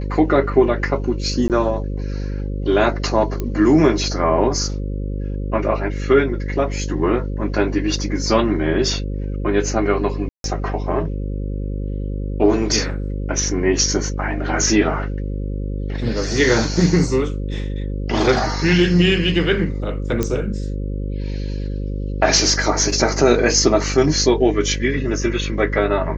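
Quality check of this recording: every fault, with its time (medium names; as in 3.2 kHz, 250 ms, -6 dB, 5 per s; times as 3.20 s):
buzz 50 Hz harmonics 11 -24 dBFS
1.48–1.50 s: dropout 18 ms
3.40 s: pop -11 dBFS
10.29–10.44 s: dropout 152 ms
20.23 s: pop -7 dBFS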